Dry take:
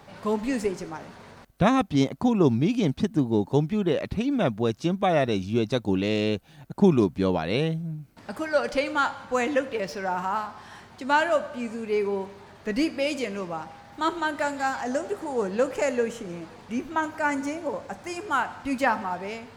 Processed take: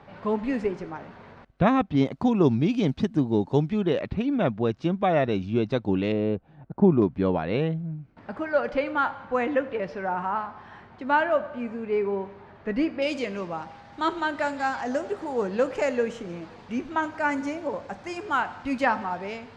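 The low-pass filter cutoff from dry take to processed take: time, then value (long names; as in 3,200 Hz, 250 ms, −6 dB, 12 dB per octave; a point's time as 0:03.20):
2,700 Hz
from 0:02.05 4,800 Hz
from 0:03.99 2,900 Hz
from 0:06.12 1,200 Hz
from 0:07.02 2,200 Hz
from 0:13.02 5,100 Hz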